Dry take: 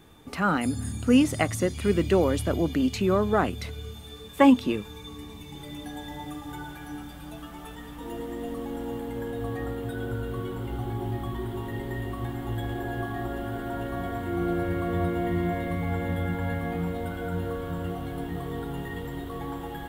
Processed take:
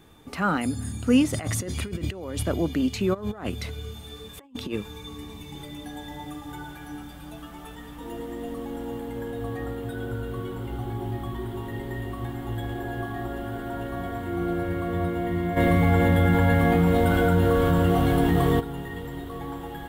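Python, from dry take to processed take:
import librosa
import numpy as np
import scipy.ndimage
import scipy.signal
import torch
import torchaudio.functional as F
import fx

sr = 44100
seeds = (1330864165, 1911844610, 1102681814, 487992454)

y = fx.over_compress(x, sr, threshold_db=-31.0, ratio=-1.0, at=(1.33, 2.43))
y = fx.over_compress(y, sr, threshold_db=-28.0, ratio=-0.5, at=(3.13, 5.65), fade=0.02)
y = fx.env_flatten(y, sr, amount_pct=70, at=(15.56, 18.59), fade=0.02)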